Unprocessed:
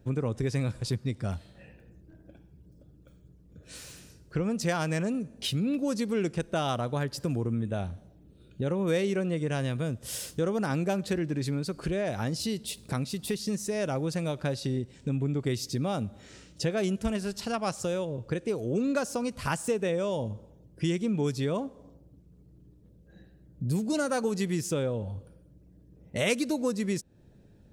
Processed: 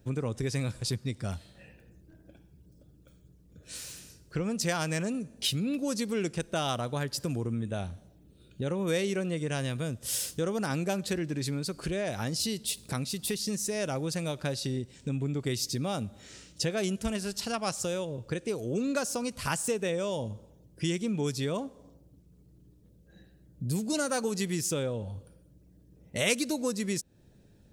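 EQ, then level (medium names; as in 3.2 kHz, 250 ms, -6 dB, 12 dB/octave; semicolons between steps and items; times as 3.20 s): treble shelf 2.8 kHz +8.5 dB; -2.5 dB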